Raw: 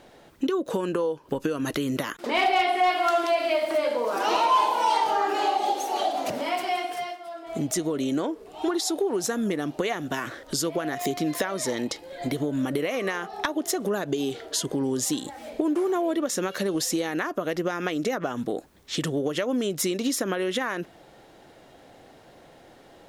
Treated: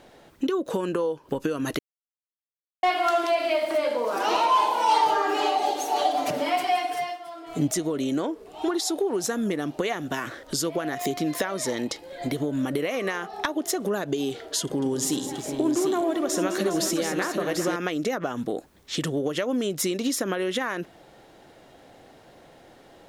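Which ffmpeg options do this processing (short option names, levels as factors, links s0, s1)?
-filter_complex "[0:a]asettb=1/sr,asplit=3[s0][s1][s2];[s0]atrim=end=4.884[s3];[s1]atrim=start=4.88:end=7.68,asetpts=PTS-STARTPTS,afade=t=in:d=0.004:c=qsin,afade=t=out:st=2.796:d=0.004:c=qsin,aecho=1:1:6.8:0.77,atrim=end_sample=123480[s4];[s2]atrim=start=7.676[s5];[s3][s4]acrossfade=d=0.004:c1=hsin:c2=qsin[s6];[s6][s5]acrossfade=d=0.004:c1=qsin:c2=hsin,asettb=1/sr,asplit=3[s7][s8][s9];[s7]atrim=end=14.614[s10];[s8]atrim=start=14.61:end=17.76,asetpts=PTS-STARTPTS,afade=t=in:d=0.004:c=qsin,afade=t=out:st=3.146:d=0.004:c=qsin,aecho=1:1:63|211|411|743:0.211|0.266|0.282|0.473,atrim=end_sample=138915[s11];[s9]atrim=start=17.756[s12];[s10][s11]acrossfade=d=0.004:c1=hsin:c2=qsin[s13];[s13][s12]acrossfade=d=0.004:c1=qsin:c2=hsin,asplit=3[s14][s15][s16];[s14]atrim=end=1.79,asetpts=PTS-STARTPTS,afade=t=out:st=1.786:d=0.004:c=hsin[s17];[s15]atrim=start=1.79:end=2.83,asetpts=PTS-STARTPTS,volume=0[s18];[s16]atrim=start=2.83,asetpts=PTS-STARTPTS,afade=t=in:d=0.004:c=hsin[s19];[s17][s18][s19]concat=n=3:v=0:a=1"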